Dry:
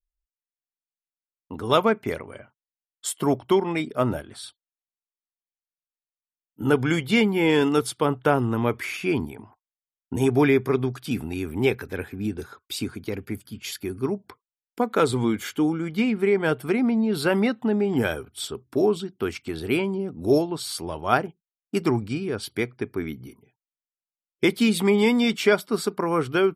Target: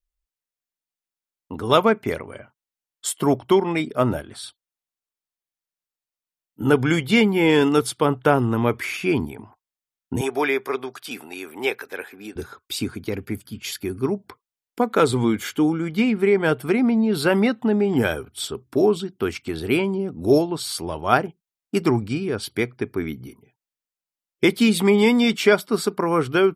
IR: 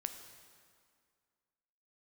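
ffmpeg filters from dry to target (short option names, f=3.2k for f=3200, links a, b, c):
-filter_complex "[0:a]asettb=1/sr,asplit=3[a][b][c];[a]atrim=end=10.214[d];[b]atrim=start=10.21:end=12.36,asetpts=PTS-STARTPTS,afade=t=in:d=0.004:c=qsin,afade=t=out:st=2.146:d=0.004:c=qsin,highpass=540[e];[c]atrim=start=12.356[f];[d][e]acrossfade=d=0.004:c1=hsin:c2=qsin[g];[g][f]acrossfade=d=0.004:c1=qsin:c2=hsin,volume=3dB"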